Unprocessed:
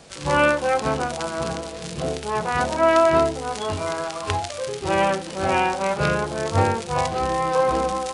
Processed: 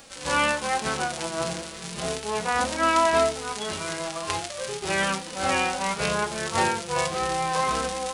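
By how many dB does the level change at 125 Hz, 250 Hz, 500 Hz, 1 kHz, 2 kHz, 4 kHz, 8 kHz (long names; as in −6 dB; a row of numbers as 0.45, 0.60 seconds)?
−8.5, −5.0, −6.5, −3.0, −1.0, +2.0, +4.0 decibels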